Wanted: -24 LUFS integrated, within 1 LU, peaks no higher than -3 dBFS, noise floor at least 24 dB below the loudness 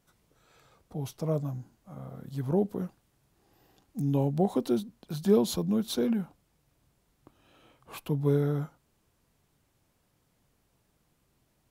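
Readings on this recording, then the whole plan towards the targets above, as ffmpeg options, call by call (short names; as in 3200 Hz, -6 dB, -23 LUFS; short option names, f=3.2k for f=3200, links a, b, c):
loudness -29.5 LUFS; peak -12.0 dBFS; loudness target -24.0 LUFS
-> -af "volume=5.5dB"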